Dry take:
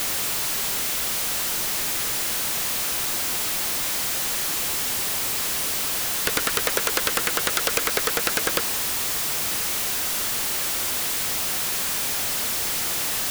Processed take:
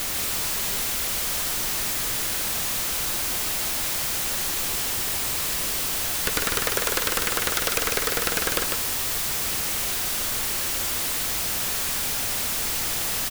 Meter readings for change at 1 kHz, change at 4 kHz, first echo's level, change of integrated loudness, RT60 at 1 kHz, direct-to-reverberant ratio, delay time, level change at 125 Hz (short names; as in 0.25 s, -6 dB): -1.0 dB, -1.0 dB, -4.0 dB, -1.0 dB, none, none, 0.149 s, +3.0 dB